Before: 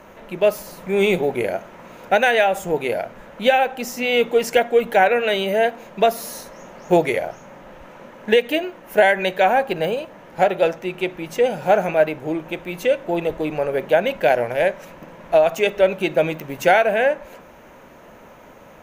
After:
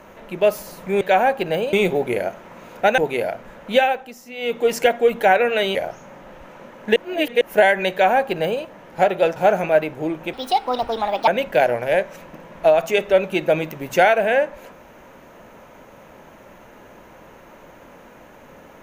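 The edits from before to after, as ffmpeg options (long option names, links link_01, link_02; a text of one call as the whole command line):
ffmpeg -i in.wav -filter_complex "[0:a]asplit=12[link_01][link_02][link_03][link_04][link_05][link_06][link_07][link_08][link_09][link_10][link_11][link_12];[link_01]atrim=end=1.012[link_13];[link_02]atrim=start=9.308:end=10.032[link_14];[link_03]atrim=start=1.008:end=2.262[link_15];[link_04]atrim=start=2.688:end=3.85,asetpts=PTS-STARTPTS,afade=type=out:start_time=0.812:duration=0.35:silence=0.211349[link_16];[link_05]atrim=start=3.85:end=4.06,asetpts=PTS-STARTPTS,volume=-13.5dB[link_17];[link_06]atrim=start=4.06:end=5.462,asetpts=PTS-STARTPTS,afade=type=in:duration=0.35:silence=0.211349[link_18];[link_07]atrim=start=7.148:end=8.362[link_19];[link_08]atrim=start=8.358:end=8.812,asetpts=PTS-STARTPTS,areverse[link_20];[link_09]atrim=start=8.808:end=10.762[link_21];[link_10]atrim=start=11.608:end=12.584[link_22];[link_11]atrim=start=12.58:end=13.96,asetpts=PTS-STARTPTS,asetrate=64386,aresample=44100[link_23];[link_12]atrim=start=13.956[link_24];[link_13][link_14]acrossfade=duration=0.004:curve1=hsin:curve2=hsin[link_25];[link_25][link_15]acrossfade=duration=0.004:curve1=hsin:curve2=hsin[link_26];[link_16][link_17][link_18]concat=n=3:v=0:a=1[link_27];[link_26][link_27]acrossfade=duration=0.004:curve1=hsin:curve2=hsin[link_28];[link_28][link_19]acrossfade=duration=0.004:curve1=hsin:curve2=hsin[link_29];[link_29][link_20]acrossfade=duration=0.004:curve1=hsin:curve2=hsin[link_30];[link_30][link_21]acrossfade=duration=0.004:curve1=hsin:curve2=hsin[link_31];[link_31][link_22]acrossfade=duration=0.004:curve1=hsin:curve2=hsin[link_32];[link_32][link_23]acrossfade=duration=0.004:curve1=hsin:curve2=hsin[link_33];[link_33][link_24]acrossfade=duration=0.004:curve1=hsin:curve2=hsin" out.wav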